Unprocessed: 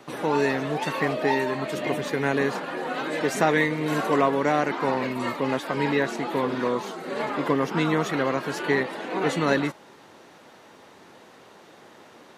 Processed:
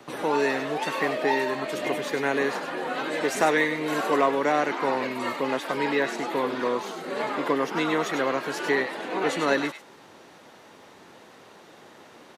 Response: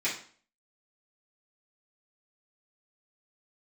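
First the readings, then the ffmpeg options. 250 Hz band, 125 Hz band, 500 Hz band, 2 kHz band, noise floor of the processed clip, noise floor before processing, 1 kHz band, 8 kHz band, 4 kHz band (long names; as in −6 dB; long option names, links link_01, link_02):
−3.0 dB, −9.5 dB, −0.5 dB, +0.5 dB, −51 dBFS, −51 dBFS, 0.0 dB, +1.0 dB, +1.0 dB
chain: -filter_complex "[0:a]acrossover=split=250|1600[link_01][link_02][link_03];[link_01]acompressor=threshold=-45dB:ratio=6[link_04];[link_03]aecho=1:1:99:0.473[link_05];[link_04][link_02][link_05]amix=inputs=3:normalize=0"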